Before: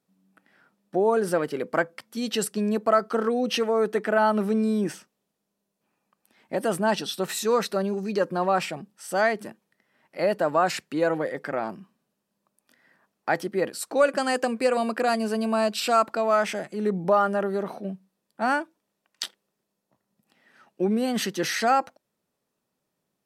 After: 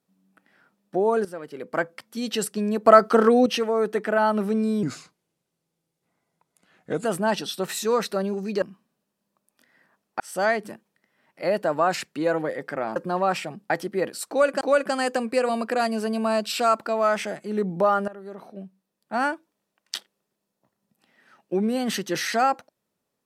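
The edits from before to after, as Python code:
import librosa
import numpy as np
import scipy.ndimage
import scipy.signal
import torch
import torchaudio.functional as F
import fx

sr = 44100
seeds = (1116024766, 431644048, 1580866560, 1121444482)

y = fx.edit(x, sr, fx.fade_in_from(start_s=1.25, length_s=0.6, curve='qua', floor_db=-13.0),
    fx.clip_gain(start_s=2.85, length_s=0.61, db=7.5),
    fx.speed_span(start_s=4.83, length_s=1.82, speed=0.82),
    fx.swap(start_s=8.22, length_s=0.74, other_s=11.72, other_length_s=1.58),
    fx.repeat(start_s=13.89, length_s=0.32, count=2),
    fx.fade_in_from(start_s=17.36, length_s=1.21, floor_db=-18.0), tone=tone)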